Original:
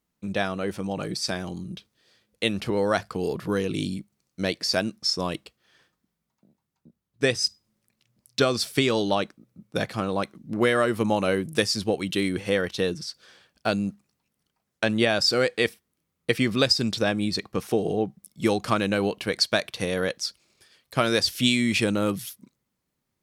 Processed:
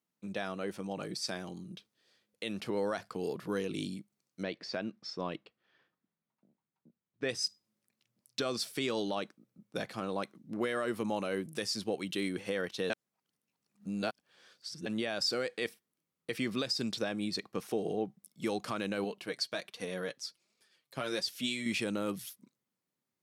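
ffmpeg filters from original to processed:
ffmpeg -i in.wav -filter_complex "[0:a]asettb=1/sr,asplit=3[link_01][link_02][link_03];[link_01]atrim=end=4.434[link_04];[link_02]atrim=start=4.43:end=7.29,asetpts=PTS-STARTPTS,afade=type=in:duration=0.004:curve=qsin,afade=type=out:start_time=2.856:duration=0.004:curve=qsin,lowpass=3000[link_05];[link_03]atrim=start=7.286[link_06];[link_04][link_05]acrossfade=duration=0.004:curve1=hsin:curve2=qsin[link_07];[link_07][link_06]acrossfade=duration=0.004:curve1=qsin:curve2=hsin,asettb=1/sr,asplit=3[link_08][link_09][link_10];[link_08]atrim=end=19.044[link_11];[link_09]atrim=start=19.04:end=21.66,asetpts=PTS-STARTPTS,afade=type=in:duration=0.004:curve=qsin,afade=type=out:start_time=2.616:duration=0.004:curve=qsin,flanger=delay=3.9:depth=3.8:regen=28:speed=1.3:shape=triangular[link_12];[link_10]atrim=start=21.656[link_13];[link_11][link_12]acrossfade=duration=0.004:curve1=hsin:curve2=qsin[link_14];[link_14][link_13]acrossfade=duration=0.004:curve1=qsin:curve2=hsin,asplit=3[link_15][link_16][link_17];[link_15]atrim=end=12.902[link_18];[link_16]atrim=start=12.898:end=14.862,asetpts=PTS-STARTPTS,areverse[link_19];[link_17]atrim=start=14.858[link_20];[link_18][link_19]acrossfade=duration=0.004:curve1=hsin:curve2=hsin[link_21];[link_21][link_20]acrossfade=duration=0.004:curve1=hsin:curve2=hsin,highpass=160,alimiter=limit=-14.5dB:level=0:latency=1:release=44,volume=-8dB" out.wav

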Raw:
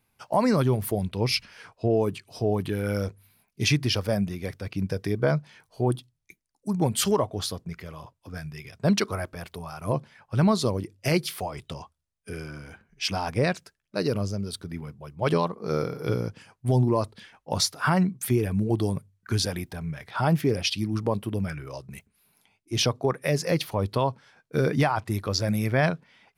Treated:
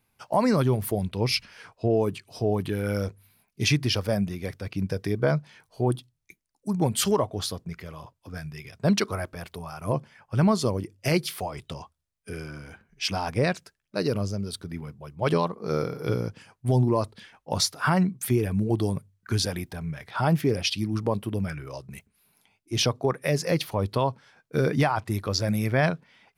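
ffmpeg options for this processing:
ffmpeg -i in.wav -filter_complex "[0:a]asettb=1/sr,asplit=3[link_01][link_02][link_03];[link_01]atrim=end=9.614[link_04];[link_02]atrim=start=9.61:end=10.98,asetpts=PTS-STARTPTS,afade=type=in:duration=0.004:curve=qsin,afade=type=out:start_time=1.366:duration=0.004:curve=qsin,bandreject=frequency=3900:width=6.4[link_05];[link_03]atrim=start=10.976[link_06];[link_04][link_05]acrossfade=duration=0.004:curve1=hsin:curve2=qsin[link_07];[link_07][link_06]acrossfade=duration=0.004:curve1=qsin:curve2=hsin" out.wav

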